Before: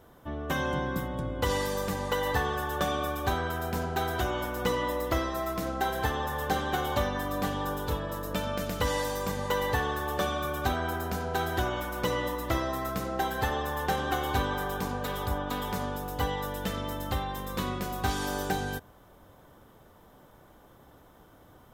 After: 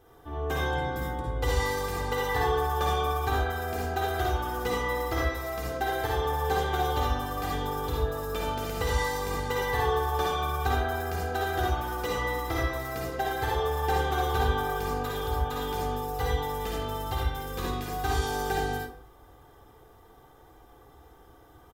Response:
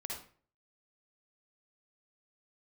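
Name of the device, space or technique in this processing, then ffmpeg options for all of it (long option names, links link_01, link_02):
microphone above a desk: -filter_complex "[0:a]aecho=1:1:2.5:0.66[link_01];[1:a]atrim=start_sample=2205[link_02];[link_01][link_02]afir=irnorm=-1:irlink=0"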